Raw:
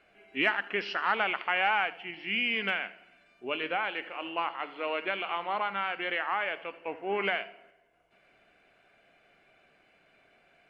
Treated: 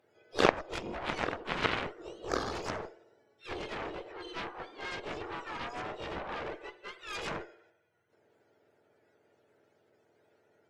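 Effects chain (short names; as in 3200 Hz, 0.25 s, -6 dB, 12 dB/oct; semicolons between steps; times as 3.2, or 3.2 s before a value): spectrum mirrored in octaves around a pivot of 1000 Hz; added harmonics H 3 -8 dB, 4 -23 dB, 6 -23 dB, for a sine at -14.5 dBFS; harmoniser +5 st -5 dB; gain +8.5 dB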